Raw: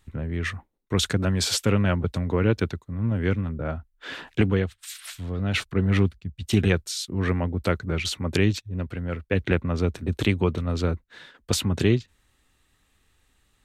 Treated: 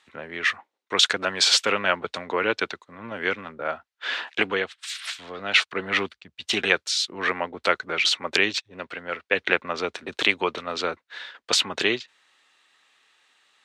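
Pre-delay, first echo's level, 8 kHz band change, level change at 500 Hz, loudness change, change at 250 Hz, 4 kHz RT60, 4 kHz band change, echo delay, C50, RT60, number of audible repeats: no reverb audible, no echo audible, +2.5 dB, −0.5 dB, +1.5 dB, −9.5 dB, no reverb audible, +8.5 dB, no echo audible, no reverb audible, no reverb audible, no echo audible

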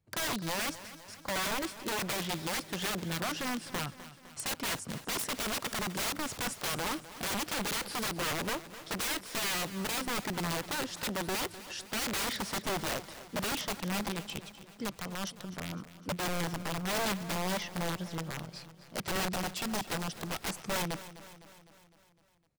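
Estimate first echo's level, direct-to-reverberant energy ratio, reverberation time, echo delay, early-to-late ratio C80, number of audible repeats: −15.0 dB, no reverb audible, no reverb audible, 254 ms, no reverb audible, 5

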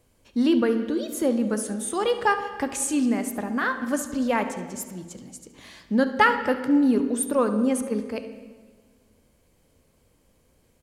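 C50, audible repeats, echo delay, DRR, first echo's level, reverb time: 9.0 dB, 1, 71 ms, 7.5 dB, −16.0 dB, 1.5 s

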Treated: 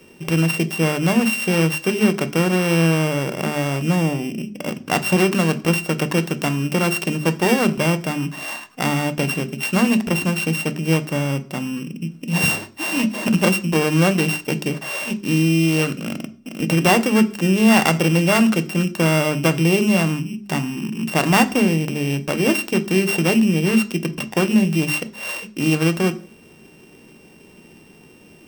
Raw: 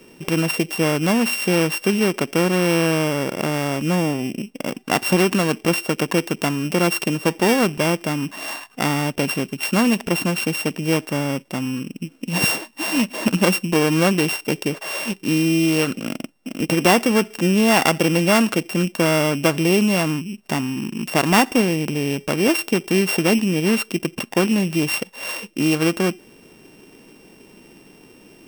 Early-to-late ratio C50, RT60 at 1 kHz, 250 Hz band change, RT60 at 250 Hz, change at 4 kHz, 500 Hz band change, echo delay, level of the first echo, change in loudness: 18.5 dB, 0.40 s, +1.0 dB, 0.50 s, −0.5 dB, −1.0 dB, no echo audible, no echo audible, +0.5 dB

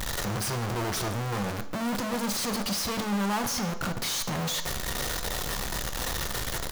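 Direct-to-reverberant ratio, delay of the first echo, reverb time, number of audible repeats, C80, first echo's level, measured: 8.0 dB, 143 ms, 0.55 s, 1, 15.5 dB, −21.0 dB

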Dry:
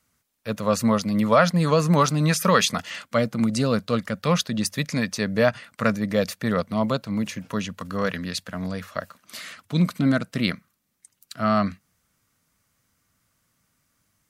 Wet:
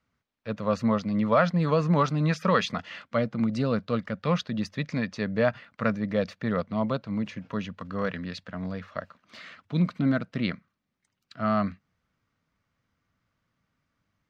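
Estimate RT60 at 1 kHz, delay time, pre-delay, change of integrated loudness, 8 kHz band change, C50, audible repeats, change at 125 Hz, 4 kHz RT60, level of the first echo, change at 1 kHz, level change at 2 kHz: no reverb audible, no echo audible, no reverb audible, −4.5 dB, below −15 dB, no reverb audible, no echo audible, −3.5 dB, no reverb audible, no echo audible, −4.5 dB, −5.5 dB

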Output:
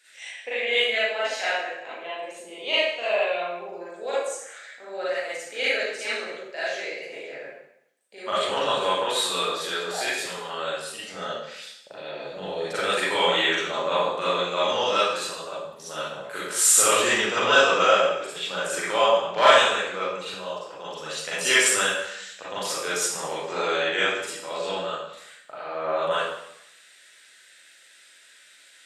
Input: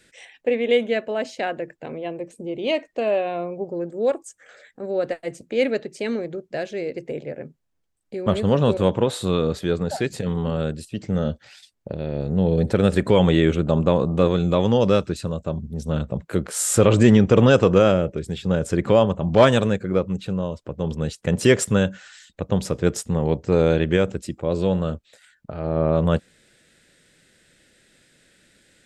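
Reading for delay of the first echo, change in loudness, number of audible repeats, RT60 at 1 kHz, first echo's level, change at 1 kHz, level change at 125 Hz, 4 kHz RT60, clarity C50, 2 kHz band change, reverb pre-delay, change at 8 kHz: no echo audible, −2.0 dB, no echo audible, 0.80 s, no echo audible, +4.0 dB, −25.0 dB, 0.75 s, −3.0 dB, +7.0 dB, 31 ms, +6.5 dB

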